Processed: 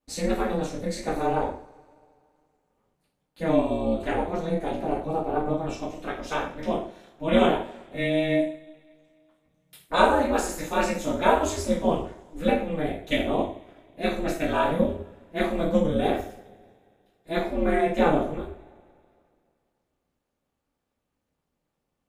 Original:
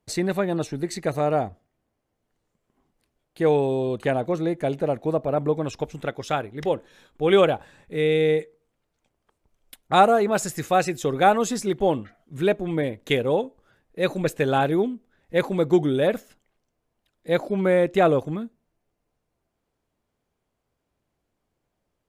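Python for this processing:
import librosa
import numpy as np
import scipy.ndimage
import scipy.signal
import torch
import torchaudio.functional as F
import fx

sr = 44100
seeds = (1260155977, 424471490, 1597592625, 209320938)

y = fx.rev_double_slope(x, sr, seeds[0], early_s=0.45, late_s=2.4, knee_db=-26, drr_db=-9.0)
y = y * np.sin(2.0 * np.pi * 160.0 * np.arange(len(y)) / sr)
y = F.gain(torch.from_numpy(y), -8.5).numpy()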